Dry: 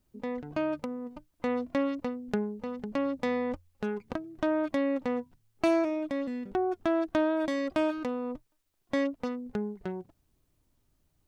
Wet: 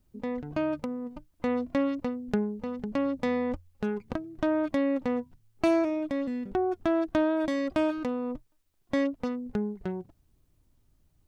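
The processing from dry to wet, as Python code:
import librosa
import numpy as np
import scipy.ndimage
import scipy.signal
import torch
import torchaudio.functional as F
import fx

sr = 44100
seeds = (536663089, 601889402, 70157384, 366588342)

y = fx.low_shelf(x, sr, hz=200.0, db=7.0)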